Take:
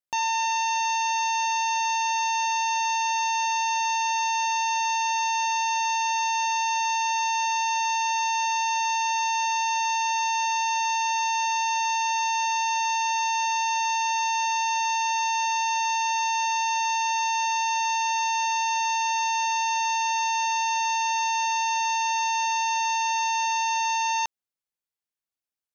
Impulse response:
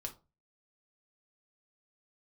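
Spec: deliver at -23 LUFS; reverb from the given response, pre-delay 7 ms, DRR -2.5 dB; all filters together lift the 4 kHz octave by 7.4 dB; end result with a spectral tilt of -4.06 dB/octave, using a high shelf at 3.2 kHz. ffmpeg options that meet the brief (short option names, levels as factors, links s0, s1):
-filter_complex "[0:a]highshelf=f=3200:g=5,equalizer=f=4000:t=o:g=5,asplit=2[s0][s1];[1:a]atrim=start_sample=2205,adelay=7[s2];[s1][s2]afir=irnorm=-1:irlink=0,volume=1.68[s3];[s0][s3]amix=inputs=2:normalize=0,volume=0.501"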